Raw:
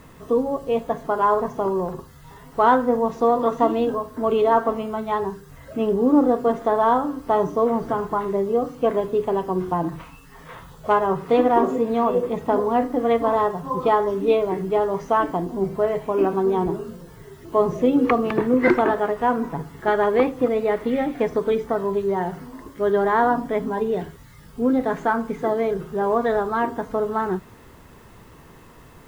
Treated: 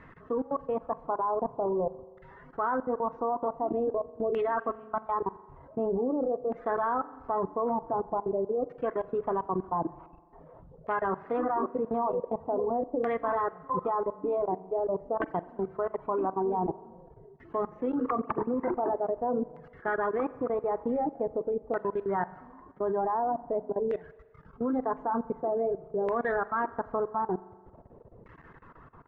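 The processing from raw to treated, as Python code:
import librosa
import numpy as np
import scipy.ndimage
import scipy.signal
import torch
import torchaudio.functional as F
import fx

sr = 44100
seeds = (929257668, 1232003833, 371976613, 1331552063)

y = fx.dereverb_blind(x, sr, rt60_s=0.61)
y = fx.filter_lfo_lowpass(y, sr, shape='saw_down', hz=0.46, low_hz=510.0, high_hz=1900.0, q=2.7)
y = fx.level_steps(y, sr, step_db=24)
y = fx.rev_spring(y, sr, rt60_s=1.5, pass_ms=(42,), chirp_ms=50, drr_db=17.0)
y = F.gain(torch.from_numpy(y), -4.0).numpy()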